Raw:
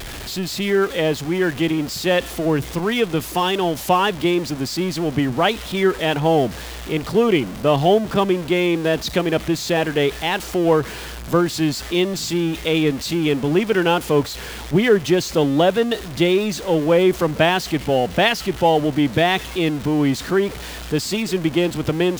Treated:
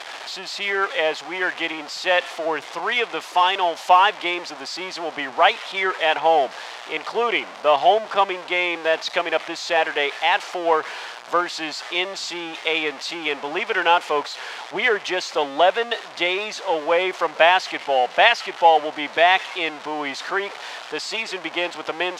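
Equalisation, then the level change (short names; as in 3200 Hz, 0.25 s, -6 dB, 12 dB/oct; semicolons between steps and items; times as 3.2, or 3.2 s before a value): resonant high-pass 770 Hz, resonance Q 1.6; LPF 5200 Hz 12 dB/oct; dynamic EQ 2200 Hz, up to +4 dB, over -34 dBFS, Q 2.2; 0.0 dB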